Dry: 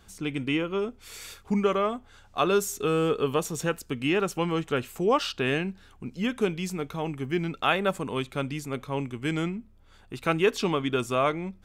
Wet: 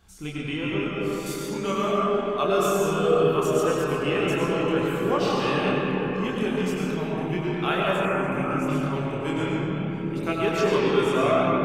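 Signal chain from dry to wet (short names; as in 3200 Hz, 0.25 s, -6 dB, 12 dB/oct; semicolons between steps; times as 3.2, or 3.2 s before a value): 1.26–1.89 tone controls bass -4 dB, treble +13 dB; reverb RT60 5.2 s, pre-delay 60 ms, DRR -5 dB; chorus voices 4, 0.33 Hz, delay 27 ms, depth 1.1 ms; 8.05–8.68 EQ curve 2500 Hz 0 dB, 3800 Hz -20 dB, 6100 Hz -2 dB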